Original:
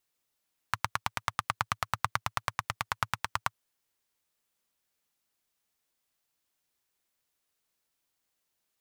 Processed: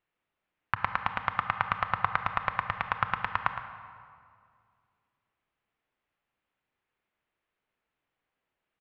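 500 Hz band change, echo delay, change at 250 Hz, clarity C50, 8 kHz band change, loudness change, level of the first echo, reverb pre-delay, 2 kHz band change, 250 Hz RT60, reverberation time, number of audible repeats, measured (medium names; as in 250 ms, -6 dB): +3.5 dB, 113 ms, +4.0 dB, 7.0 dB, under -25 dB, +3.0 dB, -11.0 dB, 26 ms, +3.5 dB, 2.3 s, 2.2 s, 1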